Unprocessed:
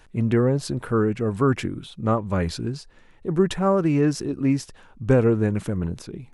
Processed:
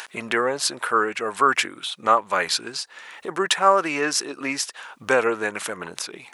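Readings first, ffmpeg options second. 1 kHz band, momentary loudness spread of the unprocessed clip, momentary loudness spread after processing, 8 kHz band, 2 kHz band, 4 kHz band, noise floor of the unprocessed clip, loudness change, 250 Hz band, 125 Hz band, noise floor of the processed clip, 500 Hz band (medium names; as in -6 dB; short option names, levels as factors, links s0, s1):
+9.5 dB, 12 LU, 13 LU, +12.5 dB, +11.5 dB, +12.5 dB, -52 dBFS, +0.5 dB, -10.0 dB, -22.0 dB, -50 dBFS, -1.0 dB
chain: -filter_complex "[0:a]highpass=1000,asplit=2[s0][s1];[s1]acompressor=mode=upward:threshold=0.0158:ratio=2.5,volume=1.41[s2];[s0][s2]amix=inputs=2:normalize=0,volume=1.68"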